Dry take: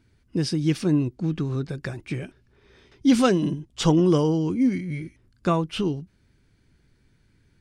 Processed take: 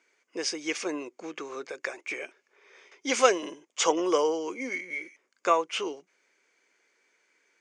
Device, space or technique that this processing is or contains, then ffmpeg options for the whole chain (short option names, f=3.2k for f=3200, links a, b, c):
phone speaker on a table: -af "highpass=f=440:w=0.5412,highpass=f=440:w=1.3066,equalizer=f=500:t=q:w=4:g=3,equalizer=f=1.1k:t=q:w=4:g=4,equalizer=f=2.2k:t=q:w=4:g=9,equalizer=f=4k:t=q:w=4:g=-6,equalizer=f=6.6k:t=q:w=4:g=10,lowpass=f=8.2k:w=0.5412,lowpass=f=8.2k:w=1.3066"